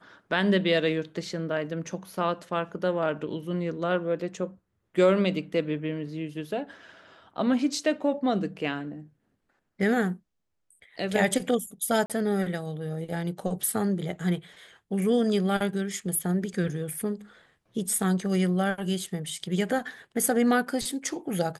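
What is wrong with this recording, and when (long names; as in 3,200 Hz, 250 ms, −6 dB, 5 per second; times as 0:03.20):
0:12.06–0:12.10: drop-out 37 ms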